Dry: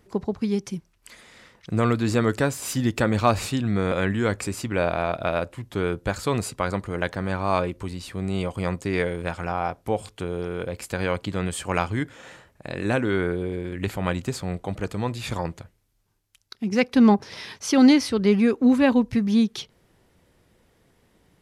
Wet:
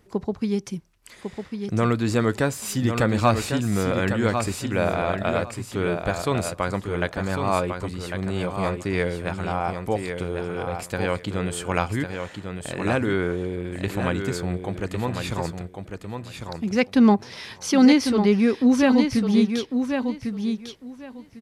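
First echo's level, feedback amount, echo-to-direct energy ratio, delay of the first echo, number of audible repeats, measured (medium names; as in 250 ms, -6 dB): -6.5 dB, 18%, -6.5 dB, 1100 ms, 2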